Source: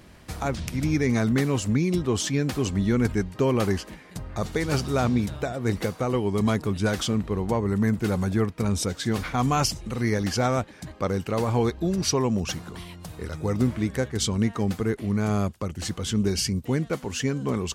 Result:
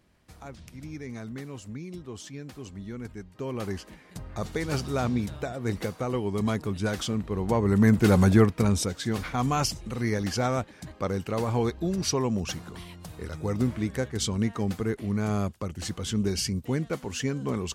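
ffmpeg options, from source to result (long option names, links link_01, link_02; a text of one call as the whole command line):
ffmpeg -i in.wav -af "volume=6.5dB,afade=type=in:start_time=3.25:duration=0.97:silence=0.266073,afade=type=in:start_time=7.29:duration=0.97:silence=0.298538,afade=type=out:start_time=8.26:duration=0.65:silence=0.334965" out.wav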